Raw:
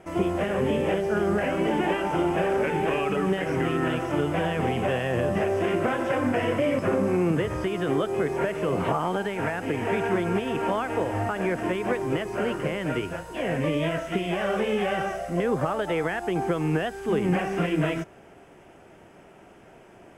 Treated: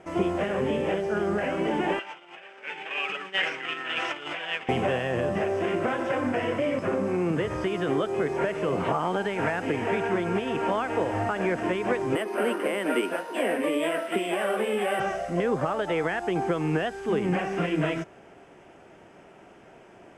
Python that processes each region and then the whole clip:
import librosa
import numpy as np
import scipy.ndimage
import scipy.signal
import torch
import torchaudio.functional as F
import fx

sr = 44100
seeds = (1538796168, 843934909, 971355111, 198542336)

y = fx.chain(x, sr, fx.over_compress(threshold_db=-28.0, ratio=-0.5),
    fx.bandpass_q(hz=2900.0, q=1.4), at=(1.99, 4.69))
y = fx.chain(y, sr, fx.steep_highpass(hz=210.0, slope=48),
    fx.resample_bad(factor=4, down='filtered', up='hold'), at=(12.15, 15.0))
y = scipy.signal.sosfilt(scipy.signal.butter(2, 8000.0, 'lowpass', fs=sr, output='sos'), y)
y = fx.low_shelf(y, sr, hz=120.0, db=-6.5)
y = fx.rider(y, sr, range_db=10, speed_s=0.5)